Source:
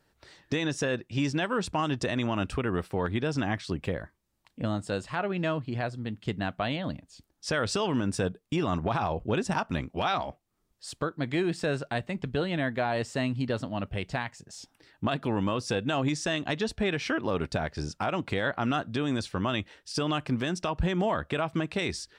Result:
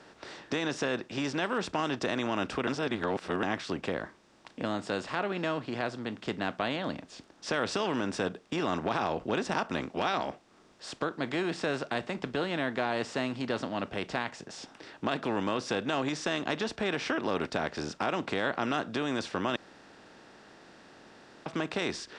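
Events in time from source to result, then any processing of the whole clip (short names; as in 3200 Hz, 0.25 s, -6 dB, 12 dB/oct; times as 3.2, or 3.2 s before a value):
2.67–3.43 reverse
19.56–21.46 room tone
whole clip: per-bin compression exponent 0.6; three-band isolator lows -12 dB, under 180 Hz, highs -23 dB, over 8000 Hz; gain -5 dB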